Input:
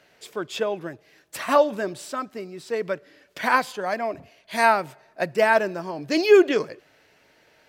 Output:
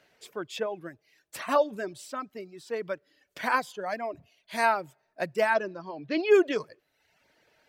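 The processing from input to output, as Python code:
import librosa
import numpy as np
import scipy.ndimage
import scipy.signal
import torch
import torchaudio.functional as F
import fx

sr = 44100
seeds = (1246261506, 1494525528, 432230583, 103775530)

y = fx.lowpass(x, sr, hz=fx.line((5.53, 6800.0), (6.3, 3400.0)), slope=24, at=(5.53, 6.3), fade=0.02)
y = fx.dereverb_blind(y, sr, rt60_s=0.8)
y = y * librosa.db_to_amplitude(-5.5)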